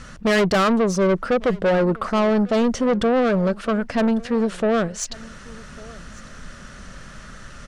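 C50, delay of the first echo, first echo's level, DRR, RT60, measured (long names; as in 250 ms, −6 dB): no reverb audible, 1,149 ms, −22.5 dB, no reverb audible, no reverb audible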